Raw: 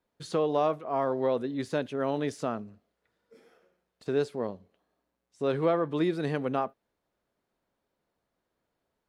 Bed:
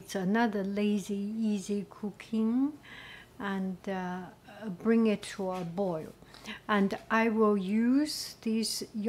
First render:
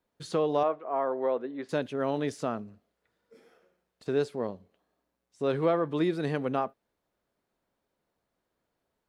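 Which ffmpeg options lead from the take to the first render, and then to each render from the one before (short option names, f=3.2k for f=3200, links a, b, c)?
-filter_complex "[0:a]asettb=1/sr,asplit=3[a][b][c];[a]atrim=end=0.634[d];[b]atrim=start=0.63:end=1.69,asetpts=PTS-STARTPTS,afade=t=in:d=0.004:c=qsin,afade=t=out:st=1.056:d=0.004:c=qsin,highpass=340,lowpass=2.1k[e];[c]atrim=start=1.686[f];[d][e]acrossfade=d=0.004:c1=hsin:c2=qsin[g];[g][f]acrossfade=d=0.004:c1=qsin:c2=hsin"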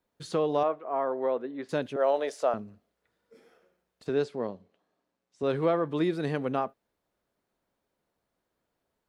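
-filter_complex "[0:a]asettb=1/sr,asplit=3[a][b][c];[a]atrim=end=1.964[d];[b]atrim=start=1.96:end=2.54,asetpts=PTS-STARTPTS,afade=t=in:d=0.004:c=qsin,afade=t=out:st=0.576:d=0.004:c=qsin,highpass=f=580:t=q:w=2.7[e];[c]atrim=start=2.536[f];[d][e]acrossfade=d=0.004:c1=hsin:c2=qsin[g];[g][f]acrossfade=d=0.004:c1=qsin:c2=hsin,asettb=1/sr,asplit=3[h][i][j];[h]atrim=end=4.094[k];[i]atrim=start=4.09:end=5.43,asetpts=PTS-STARTPTS,afade=t=in:d=0.004:c=qsin,afade=t=out:st=1.336:d=0.004:c=qsin,highpass=110,lowpass=7k[l];[j]atrim=start=5.426[m];[k][l]acrossfade=d=0.004:c1=hsin:c2=qsin[n];[n][m]acrossfade=d=0.004:c1=qsin:c2=hsin"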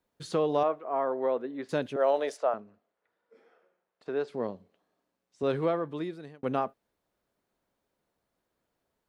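-filter_complex "[0:a]asplit=3[a][b][c];[a]afade=t=out:st=2.36:d=0.02[d];[b]bandpass=f=950:t=q:w=0.6,afade=t=in:st=2.36:d=0.02,afade=t=out:st=4.27:d=0.02[e];[c]afade=t=in:st=4.27:d=0.02[f];[d][e][f]amix=inputs=3:normalize=0,asplit=2[g][h];[g]atrim=end=6.43,asetpts=PTS-STARTPTS,afade=t=out:st=5.46:d=0.97[i];[h]atrim=start=6.43,asetpts=PTS-STARTPTS,afade=t=in:d=0.004:c=hsin[j];[i][j]concat=n=2:v=0:a=1"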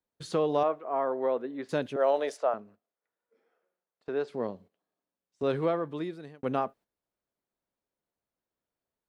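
-af "agate=range=-11dB:threshold=-52dB:ratio=16:detection=peak"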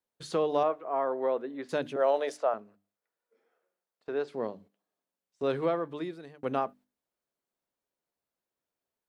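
-af "lowshelf=f=160:g=-6,bandreject=f=50:t=h:w=6,bandreject=f=100:t=h:w=6,bandreject=f=150:t=h:w=6,bandreject=f=200:t=h:w=6,bandreject=f=250:t=h:w=6,bandreject=f=300:t=h:w=6"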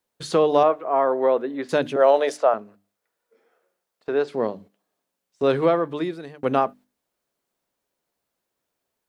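-af "volume=9.5dB"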